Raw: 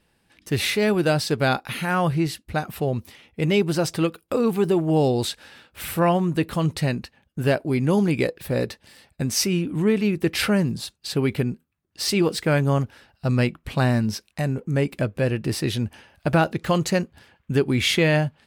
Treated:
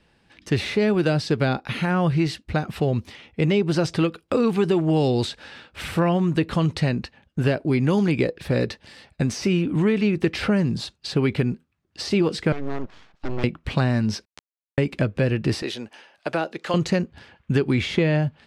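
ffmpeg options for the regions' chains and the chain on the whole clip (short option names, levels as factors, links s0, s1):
-filter_complex "[0:a]asettb=1/sr,asplit=3[s0][s1][s2];[s0]atrim=end=12.524[s3];[s1]atrim=start=12.52:end=13.44,asetpts=PTS-STARTPTS,afade=t=in:d=0.004:c=qsin,afade=t=out:st=0.916:d=0.004:c=qsin,lowpass=f=2400:p=1,acompressor=threshold=0.0501:ratio=5:attack=3.2:release=140:knee=1:detection=peak,aeval=exprs='abs(val(0))':c=same[s4];[s2]atrim=start=13.436[s5];[s3][s4]acrossfade=d=0.004:c1=hsin:c2=qsin[s6];[s6][s5]acrossfade=d=0.004:c1=qsin:c2=hsin,asettb=1/sr,asplit=3[s7][s8][s9];[s7]atrim=end=14.254[s10];[s8]atrim=start=14.25:end=14.78,asetpts=PTS-STARTPTS,afade=t=in:d=0.004:c=qsin,afade=t=out:st=0.526:d=0.004:c=qsin,acompressor=threshold=0.0126:ratio=5:attack=3.2:release=140:knee=1:detection=peak,aeval=exprs='val(0)*gte(abs(val(0)),0.0531)':c=same[s11];[s9]atrim=start=14.776[s12];[s10][s11]acrossfade=d=0.004:c1=hsin:c2=qsin[s13];[s13][s12]acrossfade=d=0.004:c1=qsin:c2=hsin,asettb=1/sr,asplit=3[s14][s15][s16];[s14]atrim=end=15.624[s17];[s15]atrim=start=15.62:end=16.74,asetpts=PTS-STARTPTS,afade=t=in:d=0.004:c=qsin,afade=t=out:st=1.116:d=0.004:c=qsin,highpass=480,equalizer=f=1500:w=0.33:g=-4[s18];[s16]atrim=start=16.736[s19];[s17][s18]acrossfade=d=0.004:c1=hsin:c2=qsin[s20];[s20][s19]acrossfade=d=0.004:c1=qsin:c2=hsin,deesser=0.5,lowpass=5700,acrossover=split=510|1100[s21][s22][s23];[s21]acompressor=threshold=0.0708:ratio=4[s24];[s22]acompressor=threshold=0.0126:ratio=4[s25];[s23]acompressor=threshold=0.0178:ratio=4[s26];[s24][s25][s26]amix=inputs=3:normalize=0,volume=1.78"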